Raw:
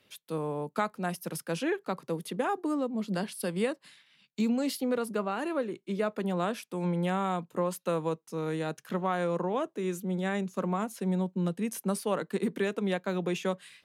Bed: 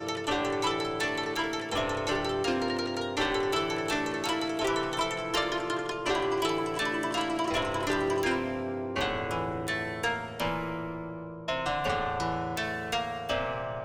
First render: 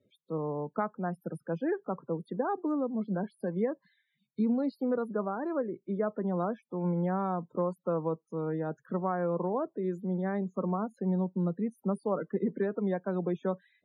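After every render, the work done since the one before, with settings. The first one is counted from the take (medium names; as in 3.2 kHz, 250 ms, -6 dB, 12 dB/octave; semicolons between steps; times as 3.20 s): loudest bins only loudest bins 32; boxcar filter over 16 samples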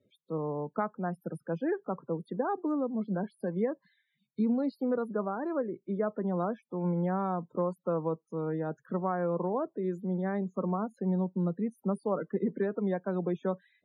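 no audible change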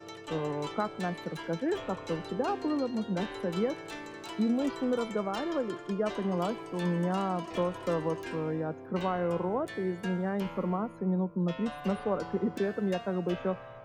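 add bed -12 dB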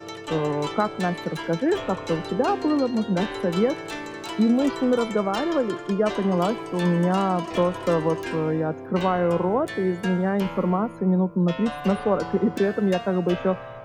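trim +8.5 dB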